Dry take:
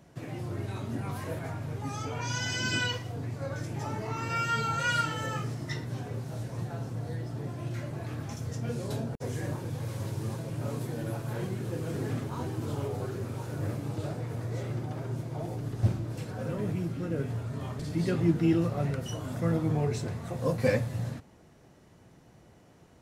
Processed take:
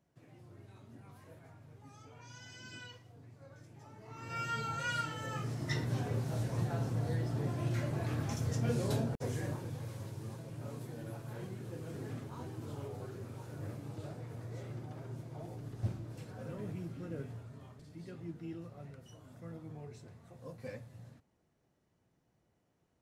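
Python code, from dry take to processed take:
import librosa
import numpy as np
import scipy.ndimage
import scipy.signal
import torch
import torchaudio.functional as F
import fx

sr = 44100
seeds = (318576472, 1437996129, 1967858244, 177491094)

y = fx.gain(x, sr, db=fx.line((3.95, -20.0), (4.41, -8.0), (5.22, -8.0), (5.8, 1.0), (8.89, 1.0), (10.11, -10.0), (17.18, -10.0), (17.86, -19.5)))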